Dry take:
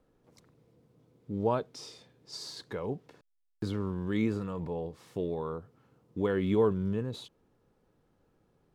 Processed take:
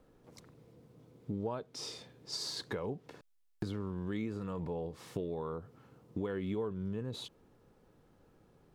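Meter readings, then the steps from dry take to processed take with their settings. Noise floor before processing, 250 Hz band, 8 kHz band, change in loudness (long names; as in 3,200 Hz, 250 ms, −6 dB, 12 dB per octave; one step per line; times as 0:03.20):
−73 dBFS, −6.5 dB, +3.0 dB, −6.5 dB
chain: downward compressor 5 to 1, threshold −40 dBFS, peak gain reduction 17 dB
level +5 dB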